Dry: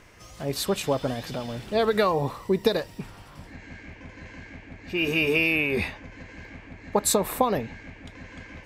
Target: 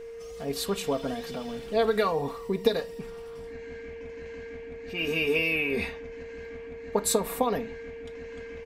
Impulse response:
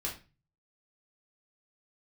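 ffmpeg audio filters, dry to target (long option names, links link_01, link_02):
-filter_complex "[0:a]aecho=1:1:4.3:0.65,aeval=exprs='val(0)+0.02*sin(2*PI*460*n/s)':channel_layout=same,asplit=2[link_01][link_02];[1:a]atrim=start_sample=2205,asetrate=42336,aresample=44100[link_03];[link_02][link_03]afir=irnorm=-1:irlink=0,volume=-14dB[link_04];[link_01][link_04]amix=inputs=2:normalize=0,volume=-6dB"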